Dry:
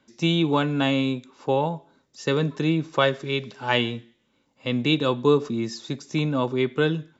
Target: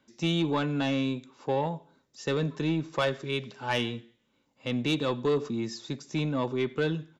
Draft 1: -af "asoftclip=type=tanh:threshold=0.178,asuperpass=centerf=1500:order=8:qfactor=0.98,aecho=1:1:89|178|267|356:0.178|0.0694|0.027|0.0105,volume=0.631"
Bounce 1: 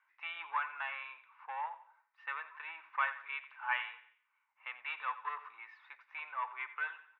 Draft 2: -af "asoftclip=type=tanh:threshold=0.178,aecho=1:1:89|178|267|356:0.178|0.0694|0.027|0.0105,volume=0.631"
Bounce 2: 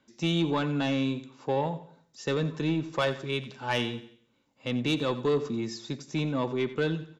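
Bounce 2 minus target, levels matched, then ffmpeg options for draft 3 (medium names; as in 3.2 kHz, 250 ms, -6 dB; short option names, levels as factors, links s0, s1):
echo-to-direct +11.5 dB
-af "asoftclip=type=tanh:threshold=0.178,aecho=1:1:89|178:0.0473|0.0185,volume=0.631"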